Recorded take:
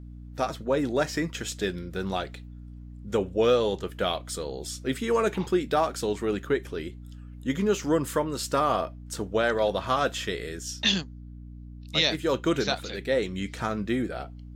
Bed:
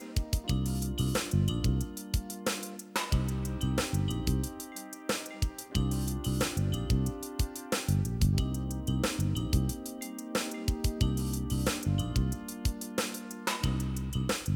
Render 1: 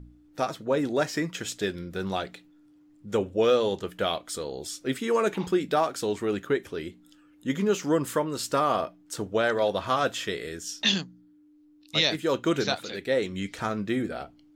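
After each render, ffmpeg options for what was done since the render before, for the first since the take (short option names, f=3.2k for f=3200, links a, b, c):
-af "bandreject=f=60:t=h:w=4,bandreject=f=120:t=h:w=4,bandreject=f=180:t=h:w=4,bandreject=f=240:t=h:w=4"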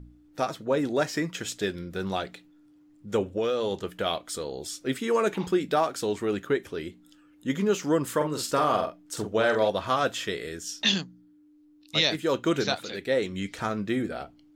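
-filter_complex "[0:a]asettb=1/sr,asplit=3[a][b][c];[a]atrim=end=3.224[d];[b]atrim=start=3.22:end=4.06,asetpts=PTS-STARTPTS,afade=t=in:d=0.004:c=qsin,afade=t=out:st=0.836:d=0.004:c=qsin,acompressor=threshold=-23dB:ratio=4:attack=3.2:release=140:knee=1:detection=peak[e];[c]atrim=start=4.056[f];[d][e]acrossfade=d=0.004:c1=hsin:c2=qsin[g];[g][f]acrossfade=d=0.004:c1=qsin:c2=hsin,asettb=1/sr,asplit=3[h][i][j];[h]atrim=end=8.164[k];[i]atrim=start=8.16:end=9.7,asetpts=PTS-STARTPTS,afade=t=in:d=0.004:c=qsin,afade=t=out:st=1.536:d=0.004:c=qsin,asplit=2[l][m];[m]adelay=46,volume=-6dB[n];[l][n]amix=inputs=2:normalize=0,atrim=end_sample=67914[o];[j]atrim=start=9.696[p];[k][o]acrossfade=d=0.004:c1=hsin:c2=qsin[q];[q][p]acrossfade=d=0.004:c1=qsin:c2=hsin"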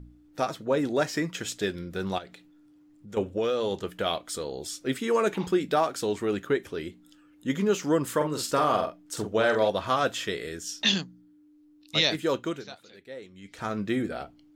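-filter_complex "[0:a]asettb=1/sr,asplit=3[a][b][c];[a]atrim=end=2.184[d];[b]atrim=start=2.18:end=3.17,asetpts=PTS-STARTPTS,afade=t=in:d=0.004:c=qsin,afade=t=out:st=0.986:d=0.004:c=qsin,acompressor=threshold=-46dB:ratio=2:attack=3.2:release=140:knee=1:detection=peak[e];[c]atrim=start=3.166[f];[d][e]acrossfade=d=0.004:c1=hsin:c2=qsin[g];[g][f]acrossfade=d=0.004:c1=qsin:c2=hsin,asplit=3[h][i][j];[h]atrim=end=12.63,asetpts=PTS-STARTPTS,afade=t=out:st=12.27:d=0.36:silence=0.158489[k];[i]atrim=start=12.63:end=13.42,asetpts=PTS-STARTPTS,volume=-16dB[l];[j]atrim=start=13.42,asetpts=PTS-STARTPTS,afade=t=in:d=0.36:silence=0.158489[m];[k][l][m]concat=n=3:v=0:a=1"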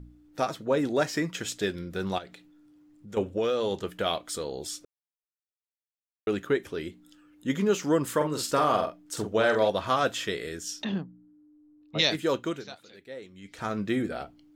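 -filter_complex "[0:a]asplit=3[a][b][c];[a]afade=t=out:st=10.83:d=0.02[d];[b]lowpass=1k,afade=t=in:st=10.83:d=0.02,afade=t=out:st=11.98:d=0.02[e];[c]afade=t=in:st=11.98:d=0.02[f];[d][e][f]amix=inputs=3:normalize=0,asplit=3[g][h][i];[g]atrim=end=4.85,asetpts=PTS-STARTPTS,afade=t=out:st=4.846:d=0.004:c=hsin[j];[h]atrim=start=4.85:end=6.27,asetpts=PTS-STARTPTS,volume=0[k];[i]atrim=start=6.27,asetpts=PTS-STARTPTS,afade=t=in:d=0.004:c=hsin[l];[j][k][l]concat=n=3:v=0:a=1"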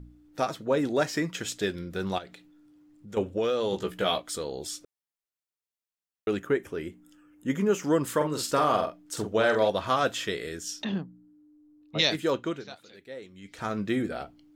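-filter_complex "[0:a]asettb=1/sr,asplit=3[a][b][c];[a]atrim=end=3.714[d];[b]atrim=start=3.71:end=4.22,asetpts=PTS-STARTPTS,afade=t=in:d=0.004:c=qsin,afade=t=out:st=0.506:d=0.004:c=qsin,asplit=2[e][f];[f]adelay=16,volume=-3dB[g];[e][g]amix=inputs=2:normalize=0,atrim=end_sample=22491[h];[c]atrim=start=4.216[i];[d][h]acrossfade=d=0.004:c1=hsin:c2=qsin[j];[j][i]acrossfade=d=0.004:c1=qsin:c2=hsin,asettb=1/sr,asplit=3[k][l][m];[k]atrim=end=6.394[n];[l]atrim=start=6.39:end=7.84,asetpts=PTS-STARTPTS,afade=t=in:d=0.004:c=qsin,afade=t=out:st=1.446:d=0.004:c=qsin,equalizer=f=4k:w=2.3:g=-12.5[o];[m]atrim=start=7.836[p];[n][o]acrossfade=d=0.004:c1=hsin:c2=qsin[q];[q][p]acrossfade=d=0.004:c1=qsin:c2=hsin,asettb=1/sr,asplit=3[r][s][t];[r]atrim=end=12.304[u];[s]atrim=start=12.3:end=12.71,asetpts=PTS-STARTPTS,afade=t=in:d=0.004:c=qsin,afade=t=out:st=0.406:d=0.004:c=qsin,highshelf=f=7.5k:g=-11.5[v];[t]atrim=start=12.706[w];[u][v]acrossfade=d=0.004:c1=hsin:c2=qsin[x];[x][w]acrossfade=d=0.004:c1=qsin:c2=hsin"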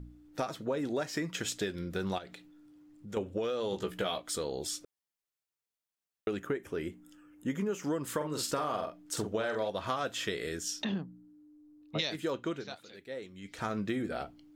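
-af "acompressor=threshold=-30dB:ratio=6"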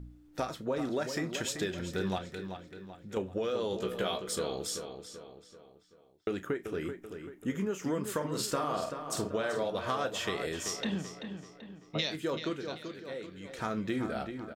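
-filter_complex "[0:a]asplit=2[a][b];[b]adelay=32,volume=-13dB[c];[a][c]amix=inputs=2:normalize=0,asplit=2[d][e];[e]adelay=385,lowpass=f=4.3k:p=1,volume=-8dB,asplit=2[f][g];[g]adelay=385,lowpass=f=4.3k:p=1,volume=0.47,asplit=2[h][i];[i]adelay=385,lowpass=f=4.3k:p=1,volume=0.47,asplit=2[j][k];[k]adelay=385,lowpass=f=4.3k:p=1,volume=0.47,asplit=2[l][m];[m]adelay=385,lowpass=f=4.3k:p=1,volume=0.47[n];[f][h][j][l][n]amix=inputs=5:normalize=0[o];[d][o]amix=inputs=2:normalize=0"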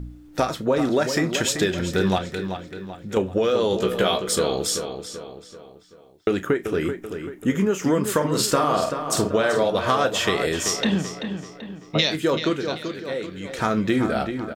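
-af "volume=12dB"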